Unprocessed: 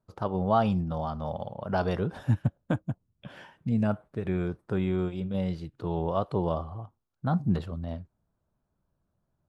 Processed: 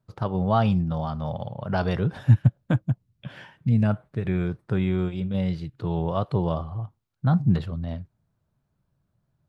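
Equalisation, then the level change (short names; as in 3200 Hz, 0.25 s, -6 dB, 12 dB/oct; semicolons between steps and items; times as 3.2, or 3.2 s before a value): graphic EQ 125/2000/4000 Hz +10/+5/+4 dB; 0.0 dB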